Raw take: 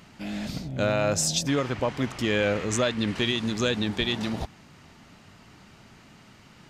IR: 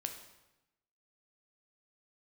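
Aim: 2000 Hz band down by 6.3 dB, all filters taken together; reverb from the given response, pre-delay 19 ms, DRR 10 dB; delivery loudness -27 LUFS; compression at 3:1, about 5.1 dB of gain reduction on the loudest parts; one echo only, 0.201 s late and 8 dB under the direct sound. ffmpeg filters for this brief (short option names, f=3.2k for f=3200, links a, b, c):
-filter_complex "[0:a]equalizer=f=2k:t=o:g=-8.5,acompressor=threshold=-28dB:ratio=3,aecho=1:1:201:0.398,asplit=2[a][b];[1:a]atrim=start_sample=2205,adelay=19[c];[b][c]afir=irnorm=-1:irlink=0,volume=-9dB[d];[a][d]amix=inputs=2:normalize=0,volume=3.5dB"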